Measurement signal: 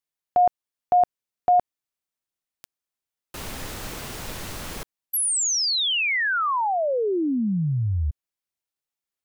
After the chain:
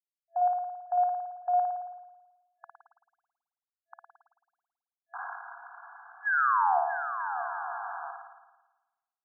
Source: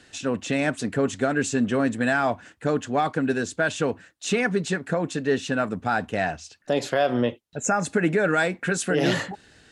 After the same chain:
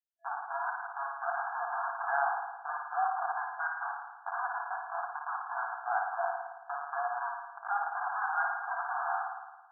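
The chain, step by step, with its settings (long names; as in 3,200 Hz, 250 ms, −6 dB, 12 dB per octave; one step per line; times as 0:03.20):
comparator with hysteresis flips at −22 dBFS
spring reverb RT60 1.1 s, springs 54 ms, chirp 50 ms, DRR 1 dB
brick-wall band-pass 670–1,700 Hz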